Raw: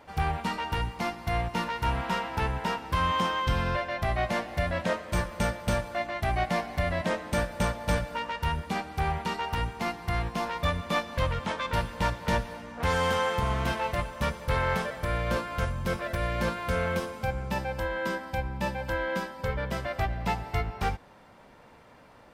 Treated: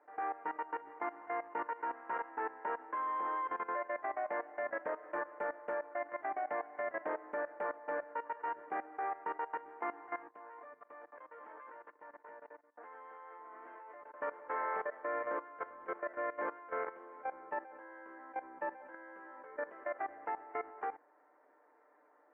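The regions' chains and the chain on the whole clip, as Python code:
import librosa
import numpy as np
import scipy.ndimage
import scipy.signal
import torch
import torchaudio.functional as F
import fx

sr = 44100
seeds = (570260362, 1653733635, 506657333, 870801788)

y = fx.chain(x, sr, fx.level_steps(step_db=20),
    fx.low_shelf(hz=78.0, db=-11.5),
    fx.band_widen(depth_pct=40), at=(10.27, 14.14))
y = scipy.signal.sosfilt(scipy.signal.ellip(3, 1.0, 40, [320.0, 1800.0], 'bandpass', fs=sr, output='sos'), y)
y = y + 0.49 * np.pad(y, (int(6.7 * sr / 1000.0), 0))[:len(y)]
y = fx.level_steps(y, sr, step_db=16)
y = y * librosa.db_to_amplitude(-4.0)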